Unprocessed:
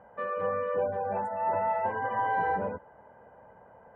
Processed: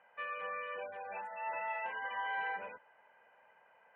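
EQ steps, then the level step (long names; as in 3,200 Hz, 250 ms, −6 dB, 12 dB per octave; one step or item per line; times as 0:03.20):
resonant band-pass 2,600 Hz, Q 5
+11.5 dB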